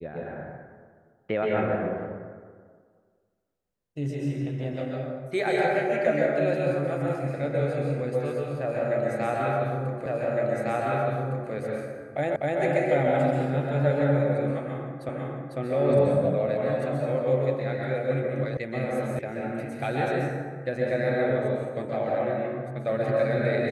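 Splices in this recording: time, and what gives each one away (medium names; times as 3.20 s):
10.06 s: repeat of the last 1.46 s
12.36 s: repeat of the last 0.25 s
15.09 s: repeat of the last 0.5 s
18.57 s: sound stops dead
19.19 s: sound stops dead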